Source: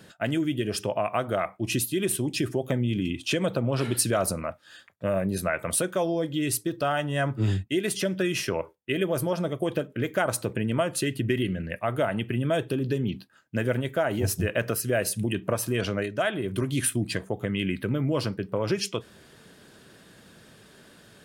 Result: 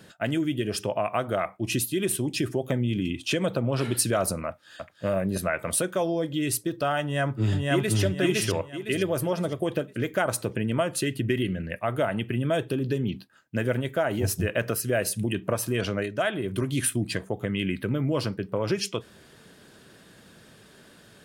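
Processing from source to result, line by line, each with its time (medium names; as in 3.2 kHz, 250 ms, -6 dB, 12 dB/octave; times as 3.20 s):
4.47–5.05 s: echo throw 320 ms, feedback 40%, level -4 dB
7.01–8.00 s: echo throw 510 ms, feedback 35%, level -0.5 dB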